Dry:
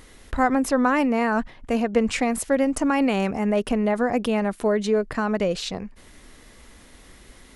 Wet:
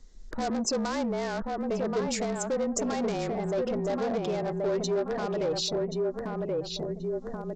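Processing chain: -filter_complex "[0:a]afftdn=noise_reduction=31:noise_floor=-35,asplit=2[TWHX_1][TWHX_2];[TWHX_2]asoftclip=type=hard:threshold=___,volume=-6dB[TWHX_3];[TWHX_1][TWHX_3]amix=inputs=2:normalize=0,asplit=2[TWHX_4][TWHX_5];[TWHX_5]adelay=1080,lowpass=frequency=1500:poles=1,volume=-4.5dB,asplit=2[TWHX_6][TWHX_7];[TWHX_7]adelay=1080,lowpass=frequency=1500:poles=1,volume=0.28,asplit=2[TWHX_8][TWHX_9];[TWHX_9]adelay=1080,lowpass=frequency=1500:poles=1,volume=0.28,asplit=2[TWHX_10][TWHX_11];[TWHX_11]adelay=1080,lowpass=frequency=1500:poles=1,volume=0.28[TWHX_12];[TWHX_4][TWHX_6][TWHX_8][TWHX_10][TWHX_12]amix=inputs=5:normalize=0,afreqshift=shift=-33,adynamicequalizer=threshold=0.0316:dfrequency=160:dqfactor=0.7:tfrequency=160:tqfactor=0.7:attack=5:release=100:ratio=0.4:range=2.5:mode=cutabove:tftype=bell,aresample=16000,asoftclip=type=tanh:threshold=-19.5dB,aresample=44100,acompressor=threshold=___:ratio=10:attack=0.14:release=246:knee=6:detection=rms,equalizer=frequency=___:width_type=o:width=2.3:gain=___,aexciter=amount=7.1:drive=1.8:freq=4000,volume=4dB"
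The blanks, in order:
-17dB, -37dB, 430, 8.5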